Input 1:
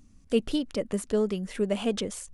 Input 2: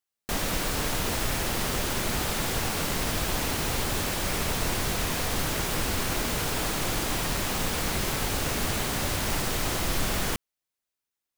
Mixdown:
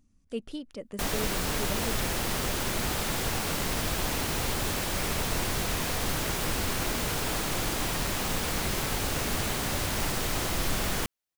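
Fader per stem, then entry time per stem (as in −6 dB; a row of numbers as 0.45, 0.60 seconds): −10.0, −1.5 decibels; 0.00, 0.70 seconds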